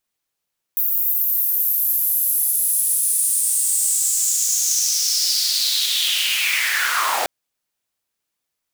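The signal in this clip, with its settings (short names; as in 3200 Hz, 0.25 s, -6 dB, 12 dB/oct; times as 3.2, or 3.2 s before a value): swept filtered noise pink, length 6.49 s highpass, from 15000 Hz, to 640 Hz, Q 4.9, linear, gain ramp -6 dB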